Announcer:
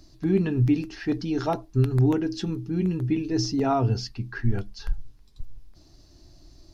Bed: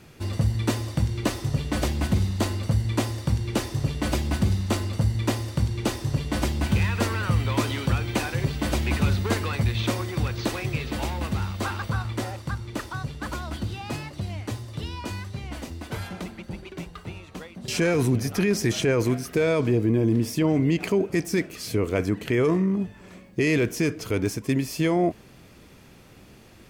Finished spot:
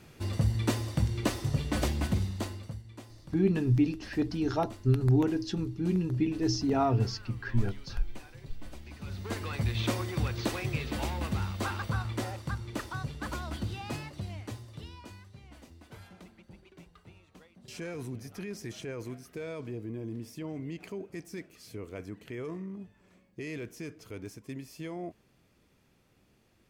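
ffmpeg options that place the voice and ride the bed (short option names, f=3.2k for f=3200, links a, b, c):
-filter_complex "[0:a]adelay=3100,volume=-3.5dB[a];[1:a]volume=14.5dB,afade=t=out:st=1.9:d=0.93:silence=0.112202,afade=t=in:st=8.99:d=0.85:silence=0.11885,afade=t=out:st=13.79:d=1.4:silence=0.237137[b];[a][b]amix=inputs=2:normalize=0"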